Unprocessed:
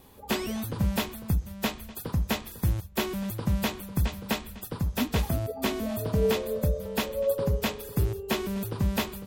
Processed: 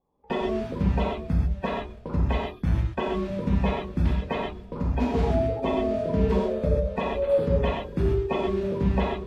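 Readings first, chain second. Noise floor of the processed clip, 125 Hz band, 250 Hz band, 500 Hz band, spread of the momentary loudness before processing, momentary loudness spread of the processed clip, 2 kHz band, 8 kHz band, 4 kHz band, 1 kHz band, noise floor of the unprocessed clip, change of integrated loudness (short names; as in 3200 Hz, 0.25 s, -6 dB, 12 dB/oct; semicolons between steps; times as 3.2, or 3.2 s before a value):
-44 dBFS, +2.5 dB, +3.5 dB, +5.0 dB, 6 LU, 6 LU, -1.5 dB, under -15 dB, -6.0 dB, +5.5 dB, -45 dBFS, +3.0 dB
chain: bin magnitudes rounded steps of 30 dB; Bessel low-pass 1900 Hz, order 2; de-hum 71.01 Hz, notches 7; gate -43 dBFS, range -24 dB; non-linear reverb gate 0.16 s flat, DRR -3.5 dB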